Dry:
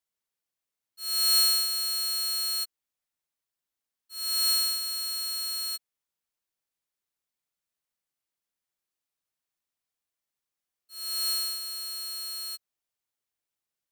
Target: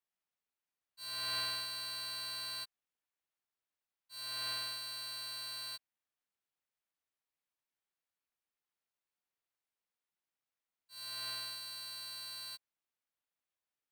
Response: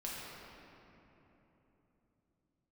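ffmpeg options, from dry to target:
-filter_complex "[0:a]bass=frequency=250:gain=-10,treble=frequency=4000:gain=-9,aeval=exprs='val(0)*sin(2*PI*260*n/s)':channel_layout=same,acrossover=split=3300[link_01][link_02];[link_02]acompressor=threshold=-41dB:ratio=4:attack=1:release=60[link_03];[link_01][link_03]amix=inputs=2:normalize=0,volume=1dB"

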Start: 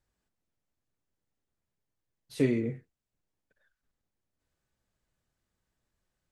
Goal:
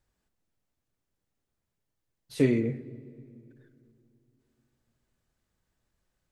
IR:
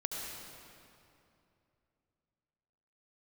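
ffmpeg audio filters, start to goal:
-filter_complex "[0:a]asplit=2[link_01][link_02];[1:a]atrim=start_sample=2205,lowshelf=frequency=170:gain=7.5,highshelf=frequency=3300:gain=-11.5[link_03];[link_02][link_03]afir=irnorm=-1:irlink=0,volume=-18.5dB[link_04];[link_01][link_04]amix=inputs=2:normalize=0,volume=2dB"

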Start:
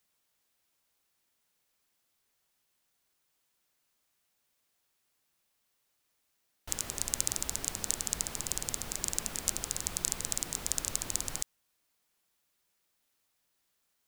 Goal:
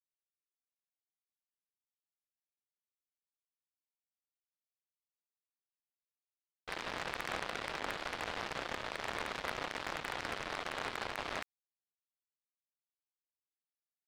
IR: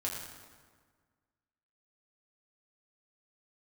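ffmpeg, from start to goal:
-filter_complex "[0:a]highpass=frequency=580:width_type=q:width=0.5412,highpass=frequency=580:width_type=q:width=1.307,lowpass=frequency=2300:width_type=q:width=0.5176,lowpass=frequency=2300:width_type=q:width=0.7071,lowpass=frequency=2300:width_type=q:width=1.932,afreqshift=-150,asplit=2[link_01][link_02];[1:a]atrim=start_sample=2205,lowpass=2200[link_03];[link_02][link_03]afir=irnorm=-1:irlink=0,volume=-12dB[link_04];[link_01][link_04]amix=inputs=2:normalize=0,acrusher=bits=6:mix=0:aa=0.5,volume=11.5dB"

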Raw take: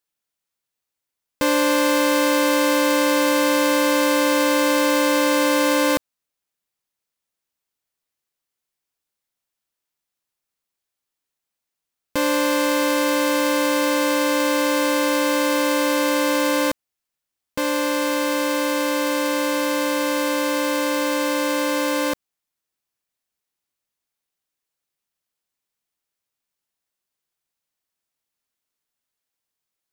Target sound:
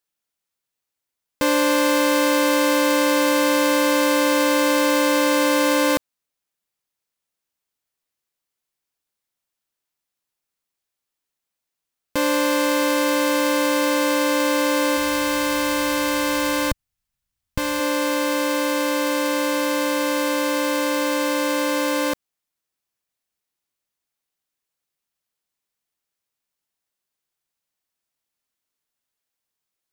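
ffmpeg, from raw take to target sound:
ffmpeg -i in.wav -filter_complex "[0:a]asplit=3[link_01][link_02][link_03];[link_01]afade=type=out:start_time=14.96:duration=0.02[link_04];[link_02]asubboost=boost=11:cutoff=110,afade=type=in:start_time=14.96:duration=0.02,afade=type=out:start_time=17.79:duration=0.02[link_05];[link_03]afade=type=in:start_time=17.79:duration=0.02[link_06];[link_04][link_05][link_06]amix=inputs=3:normalize=0" out.wav

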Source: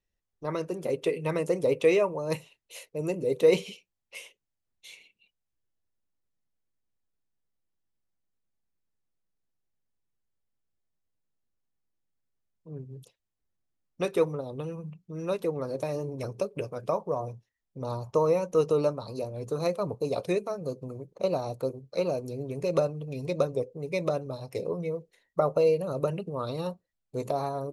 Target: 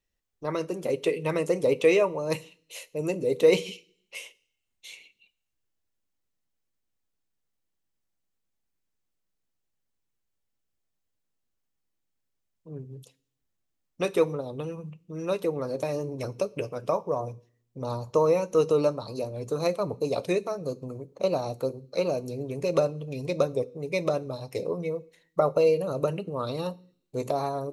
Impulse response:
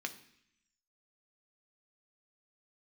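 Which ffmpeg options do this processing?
-filter_complex "[0:a]asplit=2[link_01][link_02];[1:a]atrim=start_sample=2205,asetrate=52920,aresample=44100,highshelf=frequency=4000:gain=9.5[link_03];[link_02][link_03]afir=irnorm=-1:irlink=0,volume=-8dB[link_04];[link_01][link_04]amix=inputs=2:normalize=0"

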